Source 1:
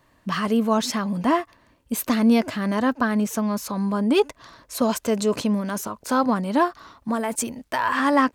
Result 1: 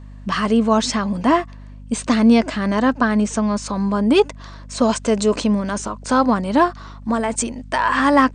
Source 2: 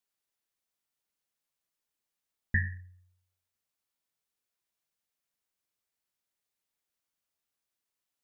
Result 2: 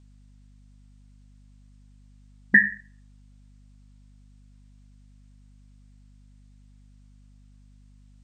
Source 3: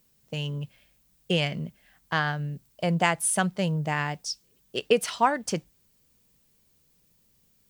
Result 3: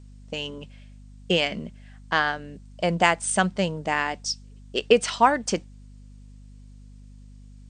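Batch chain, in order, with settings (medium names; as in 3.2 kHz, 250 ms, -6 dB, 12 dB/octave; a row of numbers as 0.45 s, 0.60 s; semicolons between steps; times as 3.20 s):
brick-wall FIR band-pass 170–9100 Hz; hum 50 Hz, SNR 19 dB; peak normalisation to -3 dBFS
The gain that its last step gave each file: +4.5 dB, +15.0 dB, +4.0 dB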